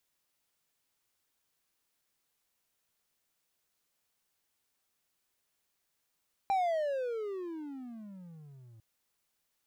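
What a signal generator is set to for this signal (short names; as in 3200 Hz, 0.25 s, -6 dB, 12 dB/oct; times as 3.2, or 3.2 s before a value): gliding synth tone triangle, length 2.30 s, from 800 Hz, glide -34.5 st, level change -27 dB, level -23.5 dB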